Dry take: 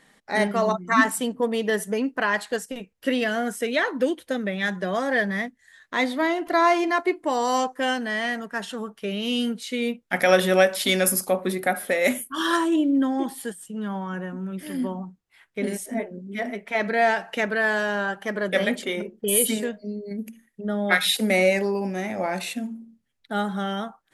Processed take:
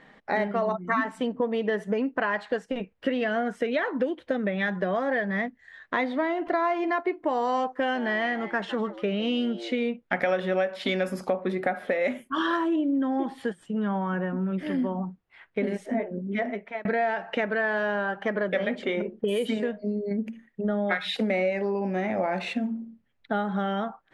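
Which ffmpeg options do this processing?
ffmpeg -i in.wav -filter_complex "[0:a]asettb=1/sr,asplit=3[link_01][link_02][link_03];[link_01]atrim=end=7.764[link_04];[link_02]atrim=start=7.76:end=9.87,asetpts=PTS-STARTPTS,afade=type=in:duration=0.004:curve=qsin,afade=type=out:start_time=2.106:duration=0.004:curve=qsin,asplit=4[link_05][link_06][link_07][link_08];[link_06]adelay=155,afreqshift=110,volume=-17.5dB[link_09];[link_07]adelay=310,afreqshift=220,volume=-26.9dB[link_10];[link_08]adelay=465,afreqshift=330,volume=-36.2dB[link_11];[link_05][link_09][link_10][link_11]amix=inputs=4:normalize=0,atrim=end_sample=93051[link_12];[link_03]atrim=start=9.866[link_13];[link_04][link_12]acrossfade=duration=0.004:curve1=hsin:curve2=qsin[link_14];[link_14][link_13]acrossfade=duration=0.004:curve1=qsin:curve2=hsin,asplit=2[link_15][link_16];[link_15]atrim=end=16.85,asetpts=PTS-STARTPTS,afade=type=out:start_time=16.33:duration=0.52[link_17];[link_16]atrim=start=16.85,asetpts=PTS-STARTPTS,afade=type=in:duration=0.004:curve=hsin[link_18];[link_17][link_18]concat=n=2:v=0:a=1,lowpass=2600,equalizer=frequency=620:width=1.5:gain=2.5,acompressor=threshold=-29dB:ratio=5,volume=5dB" out.wav

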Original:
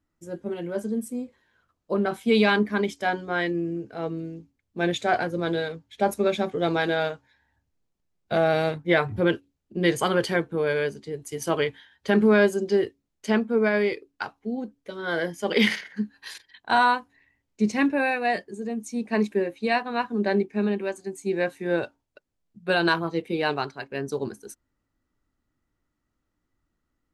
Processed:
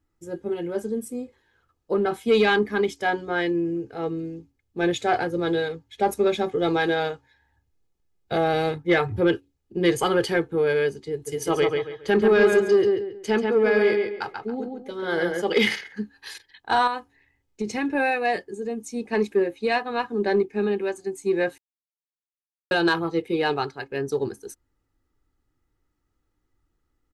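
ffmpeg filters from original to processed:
ffmpeg -i in.wav -filter_complex "[0:a]asplit=3[link_01][link_02][link_03];[link_01]afade=type=out:start_time=11.26:duration=0.02[link_04];[link_02]asplit=2[link_05][link_06];[link_06]adelay=138,lowpass=frequency=3600:poles=1,volume=-4dB,asplit=2[link_07][link_08];[link_08]adelay=138,lowpass=frequency=3600:poles=1,volume=0.31,asplit=2[link_09][link_10];[link_10]adelay=138,lowpass=frequency=3600:poles=1,volume=0.31,asplit=2[link_11][link_12];[link_12]adelay=138,lowpass=frequency=3600:poles=1,volume=0.31[link_13];[link_05][link_07][link_09][link_11][link_13]amix=inputs=5:normalize=0,afade=type=in:start_time=11.26:duration=0.02,afade=type=out:start_time=15.41:duration=0.02[link_14];[link_03]afade=type=in:start_time=15.41:duration=0.02[link_15];[link_04][link_14][link_15]amix=inputs=3:normalize=0,asettb=1/sr,asplit=3[link_16][link_17][link_18];[link_16]atrim=end=16.874[link_19];[link_17]atrim=start=16.87:end=17.95,asetpts=PTS-STARTPTS,afade=type=in:duration=0.004:curve=qsin,afade=type=out:start_time=1.076:duration=0.004:curve=qsin,acompressor=threshold=-22dB:ratio=6:attack=3.2:release=140:knee=1:detection=peak[link_20];[link_18]atrim=start=17.946[link_21];[link_19][link_20]acrossfade=duration=0.004:curve1=hsin:curve2=qsin[link_22];[link_22][link_21]acrossfade=duration=0.004:curve1=qsin:curve2=hsin,asplit=3[link_23][link_24][link_25];[link_23]atrim=end=21.58,asetpts=PTS-STARTPTS,afade=type=out:start_time=21.576:duration=0.004:curve=hsin[link_26];[link_24]atrim=start=21.58:end=22.71,asetpts=PTS-STARTPTS,volume=0[link_27];[link_25]atrim=start=22.71,asetpts=PTS-STARTPTS,afade=type=in:duration=0.004:curve=hsin[link_28];[link_26][link_27][link_28]concat=n=3:v=0:a=1,lowshelf=frequency=350:gain=3,aecho=1:1:2.4:0.46,acontrast=89,volume=-7dB" out.wav

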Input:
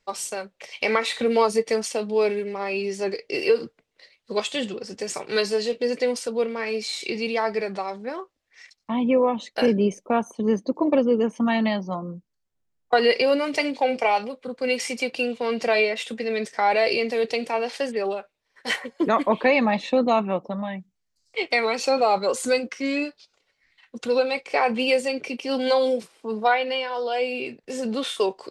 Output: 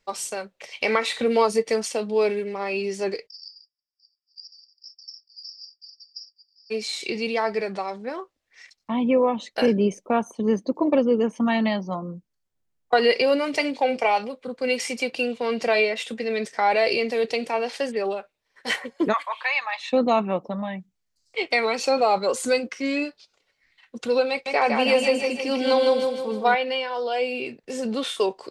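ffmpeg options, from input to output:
ffmpeg -i in.wav -filter_complex "[0:a]asplit=3[link_01][link_02][link_03];[link_01]afade=type=out:start_time=3.26:duration=0.02[link_04];[link_02]asuperpass=centerf=5100:order=20:qfactor=5,afade=type=in:start_time=3.26:duration=0.02,afade=type=out:start_time=6.7:duration=0.02[link_05];[link_03]afade=type=in:start_time=6.7:duration=0.02[link_06];[link_04][link_05][link_06]amix=inputs=3:normalize=0,asplit=3[link_07][link_08][link_09];[link_07]afade=type=out:start_time=19.12:duration=0.02[link_10];[link_08]highpass=frequency=980:width=0.5412,highpass=frequency=980:width=1.3066,afade=type=in:start_time=19.12:duration=0.02,afade=type=out:start_time=19.92:duration=0.02[link_11];[link_09]afade=type=in:start_time=19.92:duration=0.02[link_12];[link_10][link_11][link_12]amix=inputs=3:normalize=0,asettb=1/sr,asplit=3[link_13][link_14][link_15];[link_13]atrim=end=24.304[link_16];[link_14]atrim=start=24.3:end=26.55,asetpts=PTS-STARTPTS,afade=type=in:duration=0.004:curve=qsin,afade=type=out:start_time=2.246:duration=0.004:curve=qsin,aecho=1:1:159|318|477|636|795|954:0.631|0.309|0.151|0.0742|0.0364|0.0178,atrim=end_sample=99225[link_17];[link_15]atrim=start=26.546[link_18];[link_16][link_17]acrossfade=duration=0.004:curve1=hsin:curve2=qsin[link_19];[link_19][link_18]acrossfade=duration=0.004:curve1=qsin:curve2=hsin" out.wav

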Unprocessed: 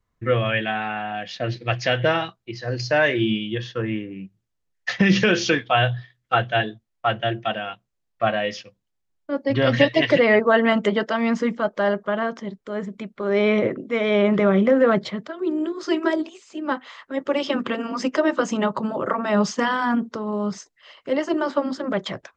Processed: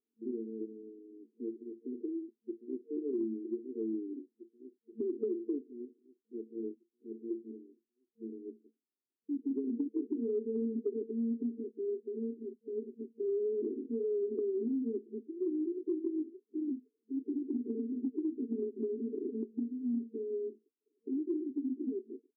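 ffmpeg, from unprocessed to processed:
ffmpeg -i in.wav -filter_complex "[0:a]asplit=2[link_01][link_02];[link_02]afade=type=in:start_time=2.2:duration=0.01,afade=type=out:start_time=2.85:duration=0.01,aecho=0:1:480|960|1440|1920|2400|2880|3360|3840|4320|4800|5280:0.841395|0.546907|0.355489|0.231068|0.150194|0.0976263|0.0634571|0.0412471|0.0268106|0.0174269|0.0113275[link_03];[link_01][link_03]amix=inputs=2:normalize=0,asplit=3[link_04][link_05][link_06];[link_04]atrim=end=18.832[link_07];[link_05]atrim=start=18.828:end=19.432,asetpts=PTS-STARTPTS,areverse[link_08];[link_06]atrim=start=19.428[link_09];[link_07][link_08]acrossfade=duration=0.004:curve1=hsin:curve2=hsin[link_10];[link_10][link_09]acrossfade=duration=0.004:curve1=hsin:curve2=hsin,afftfilt=real='re*between(b*sr/4096,220,460)':imag='im*between(b*sr/4096,220,460)':win_size=4096:overlap=0.75,acompressor=threshold=-26dB:ratio=6,volume=-5dB" out.wav

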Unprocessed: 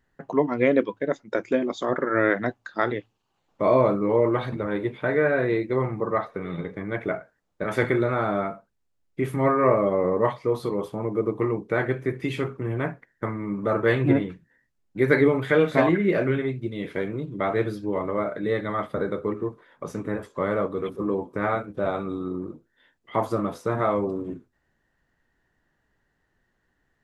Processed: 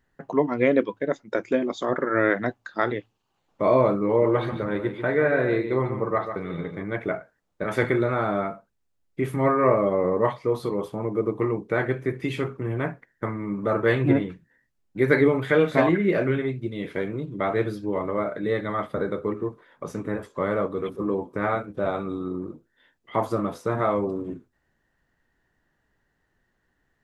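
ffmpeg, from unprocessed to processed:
ffmpeg -i in.wav -filter_complex "[0:a]asettb=1/sr,asplit=3[link_01][link_02][link_03];[link_01]atrim=end=4.074[link_04];[link_02]atrim=start=4.07:end=6.84,asetpts=PTS-STARTPTS,afade=type=in:duration=0.004:curve=qsin,afade=type=out:start_time=2.766:duration=0.004:curve=qsin,aecho=1:1:144:0.355,atrim=end_sample=122157[link_05];[link_03]atrim=start=6.836[link_06];[link_04][link_05]acrossfade=duration=0.004:curve1=hsin:curve2=qsin[link_07];[link_07][link_06]acrossfade=duration=0.004:curve1=qsin:curve2=hsin" out.wav

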